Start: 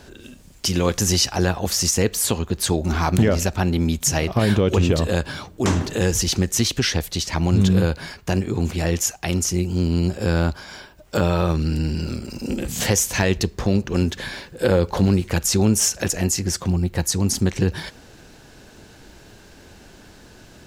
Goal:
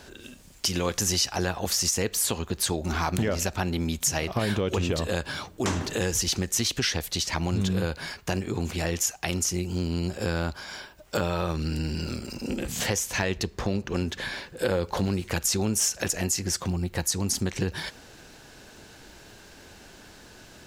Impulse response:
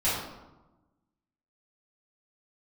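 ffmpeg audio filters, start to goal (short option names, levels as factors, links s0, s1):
-filter_complex "[0:a]lowshelf=f=470:g=-6,acompressor=threshold=0.0562:ratio=2,asettb=1/sr,asplit=3[s0][s1][s2];[s0]atrim=end=12.344[s3];[s1]atrim=start=12.34:end=14.57,asetpts=PTS-STARTPTS,afade=t=in:d=0.004:c=qsin,afade=t=out:st=2.226:d=0.004:c=qsin,highshelf=f=4700:g=-5[s4];[s2]atrim=start=14.566[s5];[s3][s4]acrossfade=d=0.004:c1=hsin:c2=qsin[s6];[s6][s5]acrossfade=d=0.004:c1=qsin:c2=hsin"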